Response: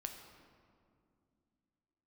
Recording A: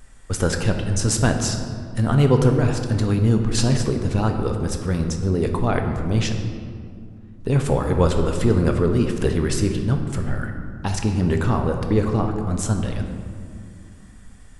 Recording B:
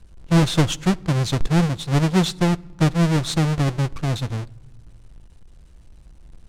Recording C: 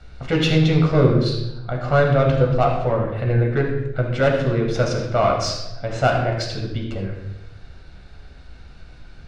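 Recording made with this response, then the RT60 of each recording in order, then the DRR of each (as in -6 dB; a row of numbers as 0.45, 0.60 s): A; 2.3 s, not exponential, 0.90 s; 4.0, 16.5, -0.5 dB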